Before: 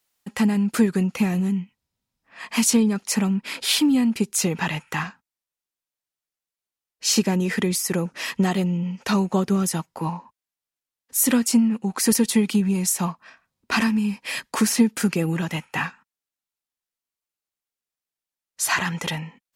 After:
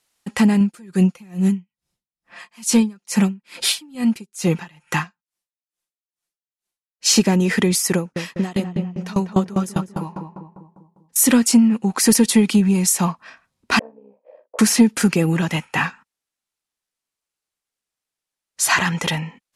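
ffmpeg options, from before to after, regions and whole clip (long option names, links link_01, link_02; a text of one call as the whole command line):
ffmpeg -i in.wav -filter_complex "[0:a]asettb=1/sr,asplit=3[link_01][link_02][link_03];[link_01]atrim=end=0.604[link_04];[link_02]atrim=start=0.6:end=7.06,asetpts=PTS-STARTPTS,afade=type=in:duration=0.004:curve=qsin,afade=type=out:start_time=6.456:duration=0.004:curve=qsin,highshelf=frequency=6700:gain=5,aecho=1:1:5.7:0.48,atrim=end_sample=284886,aeval=exprs='val(0)*pow(10,-31*(0.5-0.5*cos(2*PI*2.3*n/s))/20)':channel_layout=same[link_05];[link_03]atrim=start=7.056[link_06];[link_04][link_05]acrossfade=duration=0.004:curve1=hsin:curve2=qsin[link_07];[link_07][link_06]acrossfade=duration=0.004:curve1=qsin:curve2=hsin,asettb=1/sr,asplit=3[link_08][link_09][link_10];[link_08]atrim=end=7.964[link_11];[link_09]atrim=start=7.96:end=11.16,asetpts=PTS-STARTPTS,afade=type=in:duration=0.004:curve=qsin,afade=type=out:start_time=3.196:duration=0.004:curve=qsin,asplit=2[link_12][link_13];[link_13]adelay=198,lowpass=frequency=1400:poles=1,volume=-5dB,asplit=2[link_14][link_15];[link_15]adelay=198,lowpass=frequency=1400:poles=1,volume=0.53,asplit=2[link_16][link_17];[link_17]adelay=198,lowpass=frequency=1400:poles=1,volume=0.53,asplit=2[link_18][link_19];[link_19]adelay=198,lowpass=frequency=1400:poles=1,volume=0.53,asplit=2[link_20][link_21];[link_21]adelay=198,lowpass=frequency=1400:poles=1,volume=0.53,asplit=2[link_22][link_23];[link_23]adelay=198,lowpass=frequency=1400:poles=1,volume=0.53,asplit=2[link_24][link_25];[link_25]adelay=198,lowpass=frequency=1400:poles=1,volume=0.53[link_26];[link_12][link_14][link_16][link_18][link_20][link_22][link_24][link_26]amix=inputs=8:normalize=0,atrim=end_sample=141120,aeval=exprs='val(0)*pow(10,-23*if(lt(mod(5*n/s,1),2*abs(5)/1000),1-mod(5*n/s,1)/(2*abs(5)/1000),(mod(5*n/s,1)-2*abs(5)/1000)/(1-2*abs(5)/1000))/20)':channel_layout=same[link_27];[link_10]atrim=start=11.156[link_28];[link_11][link_27]acrossfade=duration=0.004:curve1=hsin:curve2=qsin[link_29];[link_29][link_28]acrossfade=duration=0.004:curve1=qsin:curve2=hsin,asettb=1/sr,asplit=3[link_30][link_31][link_32];[link_30]atrim=end=13.794[link_33];[link_31]atrim=start=13.79:end=14.59,asetpts=PTS-STARTPTS,afade=type=in:duration=0.004:curve=qsin,afade=type=out:start_time=0.796:duration=0.004:curve=qsin,tremolo=f=63:d=0.621,asuperpass=centerf=540:order=4:qfactor=3.2,asplit=2[link_34][link_35];[link_35]adelay=44,volume=-11dB[link_36];[link_34][link_36]amix=inputs=2:normalize=0,atrim=end_sample=35280[link_37];[link_32]atrim=start=14.586[link_38];[link_33][link_37]acrossfade=duration=0.004:curve1=hsin:curve2=qsin[link_39];[link_39][link_38]acrossfade=duration=0.004:curve1=qsin:curve2=hsin,lowpass=frequency=12000:width=0.5412,lowpass=frequency=12000:width=1.3066,acontrast=35" out.wav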